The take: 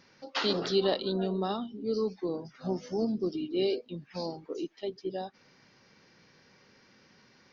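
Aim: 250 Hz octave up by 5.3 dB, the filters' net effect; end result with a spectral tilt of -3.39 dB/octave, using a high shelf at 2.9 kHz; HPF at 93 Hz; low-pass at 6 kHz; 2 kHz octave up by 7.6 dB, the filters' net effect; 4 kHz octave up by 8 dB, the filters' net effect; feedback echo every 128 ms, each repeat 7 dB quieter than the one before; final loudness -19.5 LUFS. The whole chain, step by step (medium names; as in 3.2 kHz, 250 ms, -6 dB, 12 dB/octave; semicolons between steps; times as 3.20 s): high-pass 93 Hz; low-pass 6 kHz; peaking EQ 250 Hz +7.5 dB; peaking EQ 2 kHz +6.5 dB; treble shelf 2.9 kHz +5 dB; peaking EQ 4 kHz +4.5 dB; feedback delay 128 ms, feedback 45%, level -7 dB; trim +7.5 dB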